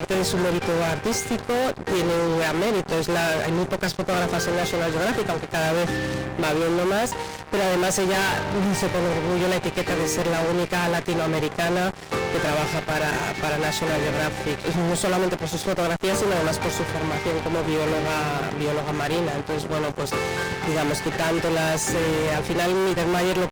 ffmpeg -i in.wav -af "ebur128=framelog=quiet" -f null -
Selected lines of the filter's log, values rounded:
Integrated loudness:
  I:         -23.6 LUFS
  Threshold: -33.6 LUFS
Loudness range:
  LRA:         1.9 LU
  Threshold: -43.7 LUFS
  LRA low:   -24.8 LUFS
  LRA high:  -22.8 LUFS